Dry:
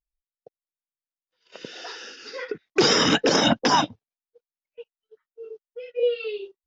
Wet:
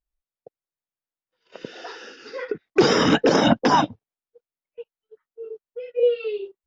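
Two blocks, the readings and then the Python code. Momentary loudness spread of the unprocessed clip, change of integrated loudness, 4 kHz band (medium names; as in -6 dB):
20 LU, +1.5 dB, -4.5 dB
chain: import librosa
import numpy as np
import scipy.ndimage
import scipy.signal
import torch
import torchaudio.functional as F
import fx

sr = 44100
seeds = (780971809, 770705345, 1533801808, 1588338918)

y = fx.high_shelf(x, sr, hz=2300.0, db=-11.5)
y = y * 10.0 ** (4.0 / 20.0)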